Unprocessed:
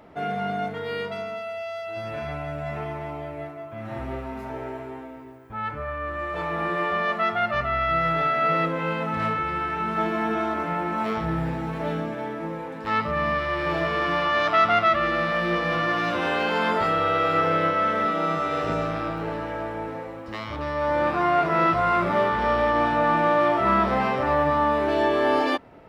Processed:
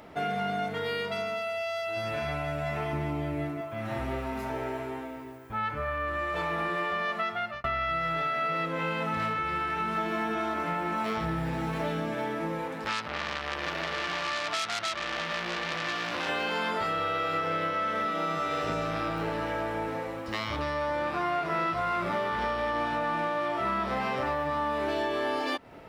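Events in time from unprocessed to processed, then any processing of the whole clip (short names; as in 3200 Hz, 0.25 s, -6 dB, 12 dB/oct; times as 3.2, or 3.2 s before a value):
2.93–3.61 resonant low shelf 410 Hz +7 dB, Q 1.5
7.18–7.64 fade out
12.67–16.29 core saturation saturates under 3600 Hz
whole clip: high shelf 2400 Hz +8.5 dB; compressor 6:1, threshold -27 dBFS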